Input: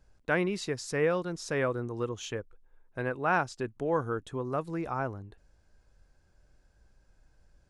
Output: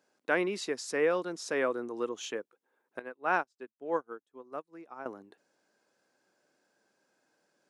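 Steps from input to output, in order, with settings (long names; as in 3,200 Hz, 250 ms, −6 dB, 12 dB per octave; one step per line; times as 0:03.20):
high-pass filter 240 Hz 24 dB per octave
0:02.99–0:05.06: expander for the loud parts 2.5 to 1, over −46 dBFS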